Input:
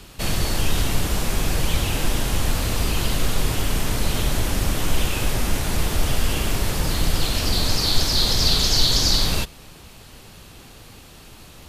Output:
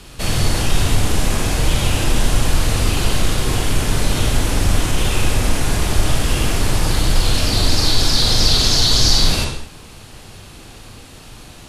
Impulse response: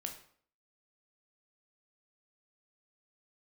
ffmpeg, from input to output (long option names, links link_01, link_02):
-filter_complex "[0:a]acontrast=36[link_01];[1:a]atrim=start_sample=2205,afade=type=out:start_time=0.17:duration=0.01,atrim=end_sample=7938,asetrate=22491,aresample=44100[link_02];[link_01][link_02]afir=irnorm=-1:irlink=0,volume=-3dB"